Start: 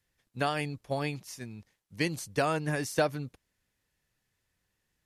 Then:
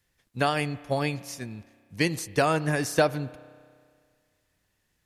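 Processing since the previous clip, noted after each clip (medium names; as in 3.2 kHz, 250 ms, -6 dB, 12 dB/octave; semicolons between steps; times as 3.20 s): spring tank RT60 2 s, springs 31 ms, chirp 25 ms, DRR 17.5 dB; trim +5 dB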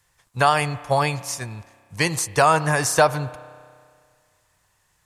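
graphic EQ 125/250/1000/8000 Hz +4/-9/+11/+8 dB; in parallel at -2.5 dB: peak limiter -15 dBFS, peak gain reduction 9.5 dB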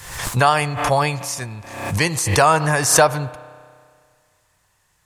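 swell ahead of each attack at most 64 dB/s; trim +2 dB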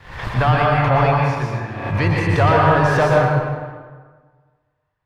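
waveshaping leveller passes 3; distance through air 350 m; plate-style reverb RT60 1.5 s, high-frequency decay 0.55×, pre-delay 105 ms, DRR -2.5 dB; trim -9 dB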